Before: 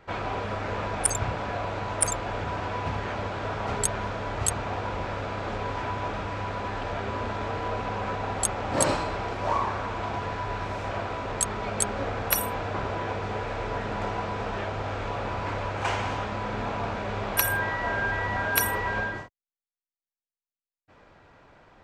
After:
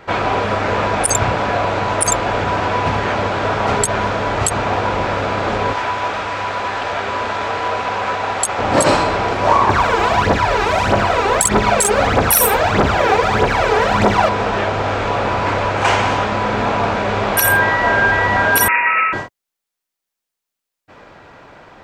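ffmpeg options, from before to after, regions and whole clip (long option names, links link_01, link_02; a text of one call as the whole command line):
ffmpeg -i in.wav -filter_complex "[0:a]asettb=1/sr,asplit=3[link_01][link_02][link_03];[link_01]atrim=end=5.734[link_04];[link_02]atrim=start=5.73:end=8.59,asetpts=PTS-STARTPTS,afade=type=in:duration=0.004:curve=qsin,afade=type=out:start_time=2.856:duration=0.004:curve=qsin,highpass=66,equalizer=frequency=160:width=0.39:gain=-10.5[link_05];[link_03]atrim=start=8.586[link_06];[link_04][link_05]acrossfade=duration=0.004:curve1=hsin:curve2=qsin[link_07];[link_07][link_06]acrossfade=duration=0.004:curve1=qsin:curve2=hsin,asettb=1/sr,asplit=3[link_08][link_09][link_10];[link_08]atrim=end=9.694[link_11];[link_09]atrim=start=9.69:end=14.29,asetpts=PTS-STARTPTS,afade=type=in:duration=0.004:curve=qsin,afade=type=out:start_time=4.596:duration=0.004:curve=qsin,highshelf=frequency=6500:gain=5,asplit=2[link_12][link_13];[link_13]adelay=44,volume=-4dB[link_14];[link_12][link_14]amix=inputs=2:normalize=0,atrim=end_sample=202860,aphaser=in_gain=1:out_gain=1:delay=2.6:decay=0.66:speed=1.6:type=triangular[link_15];[link_10]atrim=start=14.286[link_16];[link_11][link_15]acrossfade=duration=0.004:curve1=hsin:curve2=qsin[link_17];[link_17][link_16]acrossfade=duration=0.004:curve1=qsin:curve2=hsin,asettb=1/sr,asplit=3[link_18][link_19][link_20];[link_18]atrim=end=18.684[link_21];[link_19]atrim=start=18.68:end=19.13,asetpts=PTS-STARTPTS,afade=type=in:duration=0.004:curve=qsin,afade=type=out:start_time=0.446:duration=0.004:curve=qsin,highpass=210,lowpass=frequency=2500:width_type=q:width=0.5098,lowpass=frequency=2500:width_type=q:width=0.6013,lowpass=frequency=2500:width_type=q:width=0.9,lowpass=frequency=2500:width_type=q:width=2.563,afreqshift=-2900[link_22];[link_20]atrim=start=19.126[link_23];[link_21][link_22]acrossfade=duration=0.004:curve1=hsin:curve2=qsin[link_24];[link_24][link_23]acrossfade=duration=0.004:curve1=qsin:curve2=hsin,lowshelf=frequency=98:gain=-9,alimiter=level_in=15dB:limit=-1dB:release=50:level=0:latency=1,volume=-1dB" out.wav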